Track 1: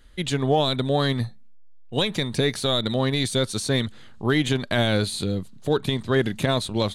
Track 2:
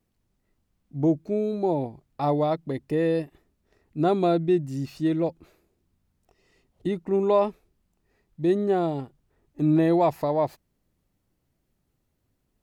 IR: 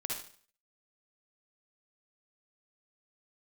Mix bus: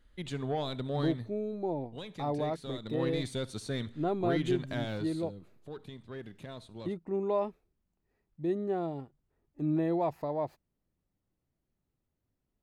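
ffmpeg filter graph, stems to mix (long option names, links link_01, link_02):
-filter_complex "[0:a]asoftclip=type=tanh:threshold=-13.5dB,volume=-4dB,afade=type=out:start_time=0.98:duration=0.33:silence=0.446684,afade=type=in:start_time=2.81:duration=0.22:silence=0.421697,afade=type=out:start_time=4.57:duration=0.76:silence=0.316228,asplit=2[link_01][link_02];[link_02]volume=-18dB[link_03];[1:a]volume=-9dB[link_04];[2:a]atrim=start_sample=2205[link_05];[link_03][link_05]afir=irnorm=-1:irlink=0[link_06];[link_01][link_04][link_06]amix=inputs=3:normalize=0,highshelf=frequency=3100:gain=-7.5"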